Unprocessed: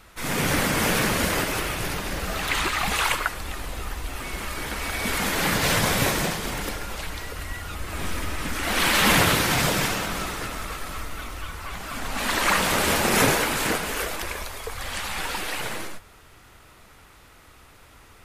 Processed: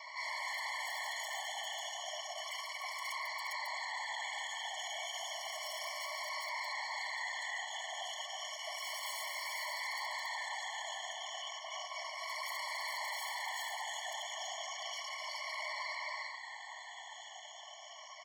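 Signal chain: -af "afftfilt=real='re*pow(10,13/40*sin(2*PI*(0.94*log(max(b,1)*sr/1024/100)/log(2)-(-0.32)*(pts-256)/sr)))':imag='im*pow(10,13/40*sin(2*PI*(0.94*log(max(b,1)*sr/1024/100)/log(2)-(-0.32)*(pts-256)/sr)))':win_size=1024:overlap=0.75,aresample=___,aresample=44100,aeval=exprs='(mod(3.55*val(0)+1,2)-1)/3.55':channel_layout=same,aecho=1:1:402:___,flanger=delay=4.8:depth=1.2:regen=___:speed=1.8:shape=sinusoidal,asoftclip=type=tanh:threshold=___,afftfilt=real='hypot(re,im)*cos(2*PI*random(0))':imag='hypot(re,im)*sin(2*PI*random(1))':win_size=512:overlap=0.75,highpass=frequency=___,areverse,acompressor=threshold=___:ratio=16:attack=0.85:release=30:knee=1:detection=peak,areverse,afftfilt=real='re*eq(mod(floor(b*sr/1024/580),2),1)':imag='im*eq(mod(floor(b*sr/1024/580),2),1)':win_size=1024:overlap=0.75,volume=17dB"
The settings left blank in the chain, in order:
16000, 0.224, -90, -28dB, 700, -51dB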